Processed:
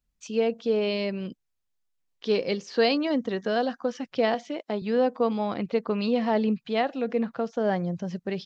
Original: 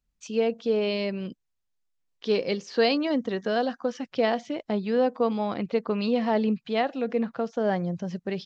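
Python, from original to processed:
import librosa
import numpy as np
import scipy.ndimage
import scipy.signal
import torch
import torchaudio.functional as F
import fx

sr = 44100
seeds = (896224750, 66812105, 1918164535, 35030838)

y = fx.highpass(x, sr, hz=260.0, slope=12, at=(4.34, 4.82))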